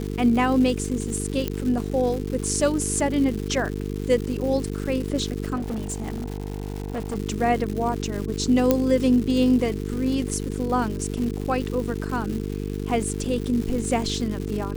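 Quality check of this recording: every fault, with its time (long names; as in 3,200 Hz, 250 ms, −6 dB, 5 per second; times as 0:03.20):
mains buzz 50 Hz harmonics 9 −29 dBFS
surface crackle 300 per second −30 dBFS
0:01.48: click −11 dBFS
0:05.55–0:07.16: clipping −24.5 dBFS
0:08.71: click −5 dBFS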